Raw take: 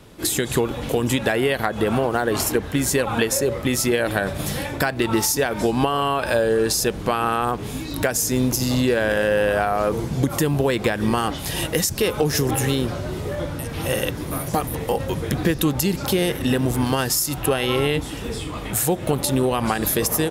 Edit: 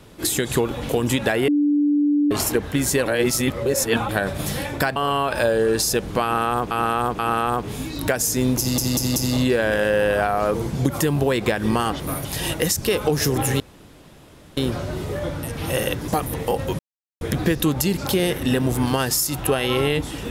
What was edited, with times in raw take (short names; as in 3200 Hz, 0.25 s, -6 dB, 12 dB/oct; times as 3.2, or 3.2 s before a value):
1.48–2.31 bleep 292 Hz -15 dBFS
3.06–4.09 reverse
4.96–5.87 cut
7.14–7.62 loop, 3 plays
8.54 stutter 0.19 s, 4 plays
12.73 insert room tone 0.97 s
14.24–14.49 move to 11.38
15.2 insert silence 0.42 s